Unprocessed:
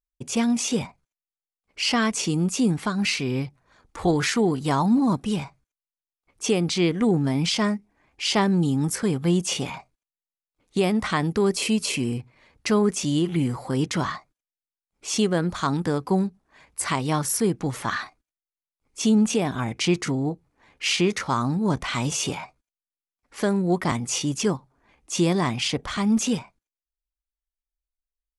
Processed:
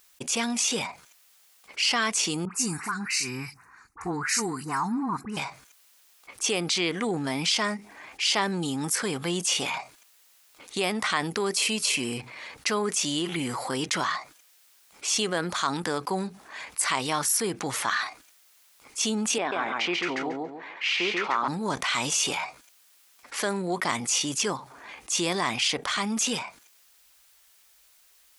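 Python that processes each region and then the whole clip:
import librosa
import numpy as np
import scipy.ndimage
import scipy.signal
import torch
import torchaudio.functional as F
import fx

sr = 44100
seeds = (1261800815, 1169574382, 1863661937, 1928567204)

y = fx.chain(x, sr, fx.fixed_phaser(hz=1400.0, stages=4),
    fx.dispersion(late='highs', ms=62.0, hz=1900.0),
    fx.band_widen(depth_pct=100), at=(2.45, 5.37))
y = fx.chain(y, sr, fx.bandpass_edges(low_hz=280.0, high_hz=2500.0),
    fx.echo_feedback(ms=139, feedback_pct=16, wet_db=-3.5), at=(19.38, 21.48))
y = fx.highpass(y, sr, hz=1200.0, slope=6)
y = fx.env_flatten(y, sr, amount_pct=50)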